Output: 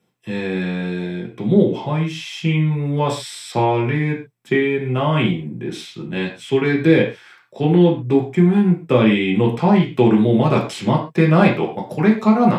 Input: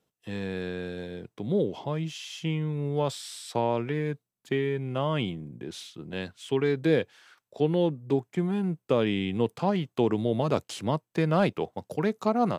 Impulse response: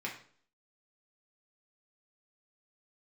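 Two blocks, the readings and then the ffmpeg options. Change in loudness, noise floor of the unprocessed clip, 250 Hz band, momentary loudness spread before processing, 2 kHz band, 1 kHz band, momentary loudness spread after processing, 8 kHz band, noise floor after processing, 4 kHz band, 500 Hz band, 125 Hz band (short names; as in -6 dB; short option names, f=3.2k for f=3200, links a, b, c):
+11.0 dB, -85 dBFS, +13.0 dB, 12 LU, +12.5 dB, +10.0 dB, 11 LU, n/a, -48 dBFS, +8.5 dB, +8.5 dB, +12.0 dB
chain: -filter_complex "[1:a]atrim=start_sample=2205,afade=t=out:st=0.19:d=0.01,atrim=end_sample=8820[a];[0:a][a]afir=irnorm=-1:irlink=0,volume=9dB"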